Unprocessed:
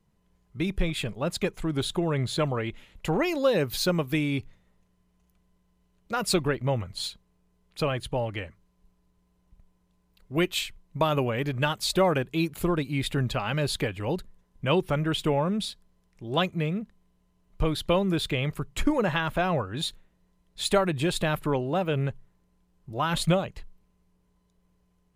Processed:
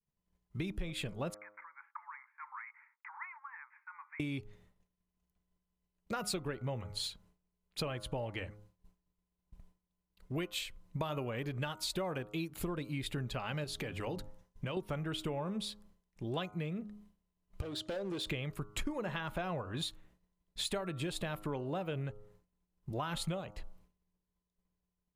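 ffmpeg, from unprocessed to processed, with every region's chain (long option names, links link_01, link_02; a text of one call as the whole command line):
ffmpeg -i in.wav -filter_complex "[0:a]asettb=1/sr,asplit=3[link_01][link_02][link_03];[link_01]atrim=end=1.344[link_04];[link_02]atrim=start=1.34:end=4.2,asetpts=PTS-STARTPTS,afade=type=in:duration=0.004:curve=qsin,afade=type=out:start_time=2.856:duration=0.004:curve=qsin,acompressor=threshold=-35dB:ratio=5:attack=3.2:release=140:knee=1:detection=peak,afreqshift=18,asuperpass=centerf=1400:order=20:qfactor=1[link_05];[link_03]atrim=start=4.196[link_06];[link_04][link_05]acrossfade=duration=0.004:curve1=hsin:curve2=qsin[link_07];[link_07][link_06]acrossfade=duration=0.004:curve1=qsin:curve2=hsin,asettb=1/sr,asplit=3[link_08][link_09][link_10];[link_08]atrim=end=13.644[link_11];[link_09]atrim=start=13.64:end=14.77,asetpts=PTS-STARTPTS,afade=type=in:duration=0.004:curve=qsin,afade=type=out:start_time=1.126:duration=0.004:curve=qsin,equalizer=frequency=5800:width_type=o:width=0.35:gain=4,bandreject=frequency=50:width_type=h:width=6,bandreject=frequency=100:width_type=h:width=6,bandreject=frequency=150:width_type=h:width=6,bandreject=frequency=200:width_type=h:width=6,bandreject=frequency=250:width_type=h:width=6,bandreject=frequency=300:width_type=h:width=6,acompressor=threshold=-29dB:ratio=6:attack=3.2:release=140:knee=1:detection=peak[link_12];[link_10]atrim=start=14.766[link_13];[link_11][link_12]acrossfade=duration=0.004:curve1=hsin:curve2=qsin[link_14];[link_14][link_13]acrossfade=duration=0.004:curve1=qsin:curve2=hsin,asettb=1/sr,asplit=3[link_15][link_16][link_17];[link_15]atrim=end=17.614[link_18];[link_16]atrim=start=17.61:end=18.27,asetpts=PTS-STARTPTS,afade=type=in:duration=0.004:curve=qsin,afade=type=out:start_time=0.656:duration=0.004:curve=qsin,highpass=180,equalizer=frequency=180:width_type=q:width=4:gain=-6,equalizer=frequency=370:width_type=q:width=4:gain=3,equalizer=frequency=570:width_type=q:width=4:gain=7,equalizer=frequency=1000:width_type=q:width=4:gain=-9,equalizer=frequency=2100:width_type=q:width=4:gain=-7,lowpass=frequency=9100:width=0.5412,lowpass=frequency=9100:width=1.3066,acompressor=threshold=-33dB:ratio=3:attack=3.2:release=140:knee=1:detection=peak,asoftclip=type=hard:threshold=-32dB[link_19];[link_17]atrim=start=18.266[link_20];[link_18][link_19]acrossfade=duration=0.004:curve1=hsin:curve2=qsin[link_21];[link_21][link_20]acrossfade=duration=0.004:curve1=qsin:curve2=hsin,bandreject=frequency=104.2:width_type=h:width=4,bandreject=frequency=208.4:width_type=h:width=4,bandreject=frequency=312.6:width_type=h:width=4,bandreject=frequency=416.8:width_type=h:width=4,bandreject=frequency=521:width_type=h:width=4,bandreject=frequency=625.2:width_type=h:width=4,bandreject=frequency=729.4:width_type=h:width=4,bandreject=frequency=833.6:width_type=h:width=4,bandreject=frequency=937.8:width_type=h:width=4,bandreject=frequency=1042:width_type=h:width=4,bandreject=frequency=1146.2:width_type=h:width=4,bandreject=frequency=1250.4:width_type=h:width=4,bandreject=frequency=1354.6:width_type=h:width=4,bandreject=frequency=1458.8:width_type=h:width=4,agate=range=-33dB:threshold=-55dB:ratio=3:detection=peak,acompressor=threshold=-37dB:ratio=5,volume=1dB" out.wav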